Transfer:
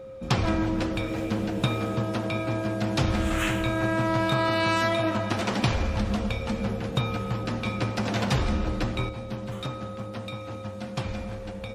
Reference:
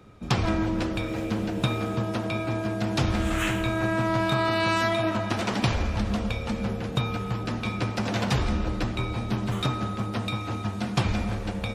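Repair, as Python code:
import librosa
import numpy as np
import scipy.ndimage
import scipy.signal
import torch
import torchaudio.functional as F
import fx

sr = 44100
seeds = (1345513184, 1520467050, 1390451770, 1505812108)

y = fx.notch(x, sr, hz=530.0, q=30.0)
y = fx.gain(y, sr, db=fx.steps((0.0, 0.0), (9.09, 7.0)))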